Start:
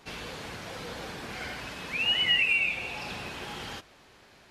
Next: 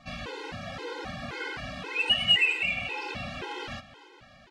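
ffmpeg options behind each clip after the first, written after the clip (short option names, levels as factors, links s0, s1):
-af "adynamicsmooth=sensitivity=1:basefreq=5300,aecho=1:1:279|558|837|1116:0.141|0.0692|0.0339|0.0166,afftfilt=real='re*gt(sin(2*PI*1.9*pts/sr)*(1-2*mod(floor(b*sr/1024/270),2)),0)':imag='im*gt(sin(2*PI*1.9*pts/sr)*(1-2*mod(floor(b*sr/1024/270),2)),0)':win_size=1024:overlap=0.75,volume=1.88"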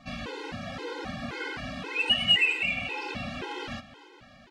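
-af "equalizer=f=250:w=2.1:g=6"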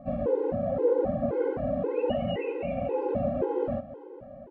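-af "lowpass=f=550:t=q:w=4.9,volume=1.78"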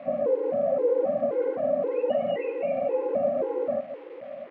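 -filter_complex "[0:a]asplit=2[s0][s1];[s1]alimiter=level_in=1.06:limit=0.0631:level=0:latency=1:release=341,volume=0.944,volume=1.26[s2];[s0][s2]amix=inputs=2:normalize=0,acrusher=bits=8:dc=4:mix=0:aa=0.000001,highpass=370,equalizer=f=390:t=q:w=4:g=-9,equalizer=f=580:t=q:w=4:g=4,equalizer=f=880:t=q:w=4:g=-9,equalizer=f=1500:t=q:w=4:g=-7,lowpass=f=2300:w=0.5412,lowpass=f=2300:w=1.3066"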